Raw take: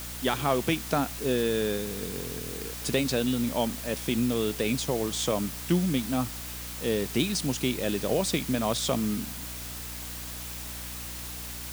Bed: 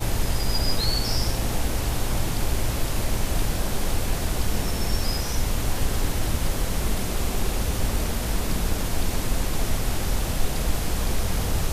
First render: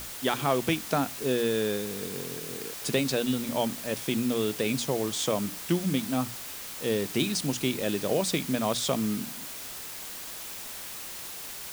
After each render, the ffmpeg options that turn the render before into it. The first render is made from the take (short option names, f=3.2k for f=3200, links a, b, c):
-af "bandreject=f=60:t=h:w=6,bandreject=f=120:t=h:w=6,bandreject=f=180:t=h:w=6,bandreject=f=240:t=h:w=6,bandreject=f=300:t=h:w=6"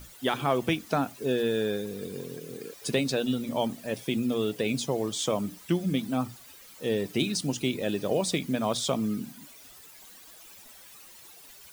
-af "afftdn=nr=14:nf=-40"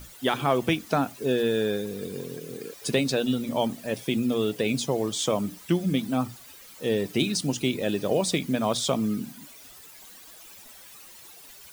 -af "volume=2.5dB"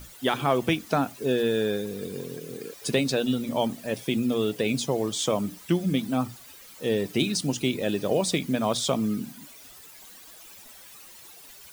-af anull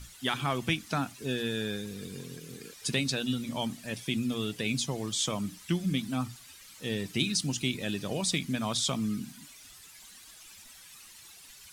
-af "lowpass=11k,equalizer=f=510:t=o:w=1.9:g=-12.5"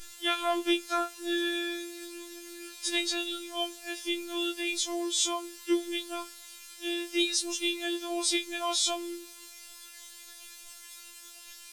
-af "afftfilt=real='hypot(re,im)*cos(PI*b)':imag='0':win_size=1024:overlap=0.75,afftfilt=real='re*4*eq(mod(b,16),0)':imag='im*4*eq(mod(b,16),0)':win_size=2048:overlap=0.75"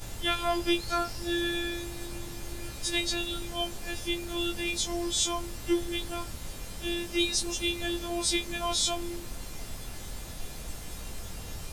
-filter_complex "[1:a]volume=-16dB[a];[0:a][a]amix=inputs=2:normalize=0"